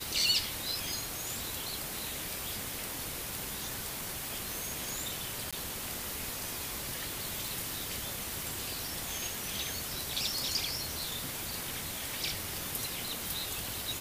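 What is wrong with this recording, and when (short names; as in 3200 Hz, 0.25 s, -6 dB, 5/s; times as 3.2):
5.51–5.53 gap 16 ms
7.48 pop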